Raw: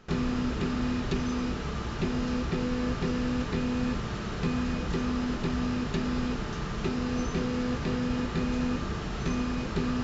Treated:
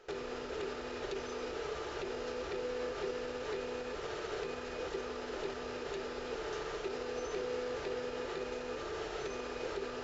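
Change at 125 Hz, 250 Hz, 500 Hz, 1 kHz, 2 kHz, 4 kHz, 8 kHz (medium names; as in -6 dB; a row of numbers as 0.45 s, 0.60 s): -22.5 dB, -18.0 dB, -1.0 dB, -6.0 dB, -6.0 dB, -6.0 dB, no reading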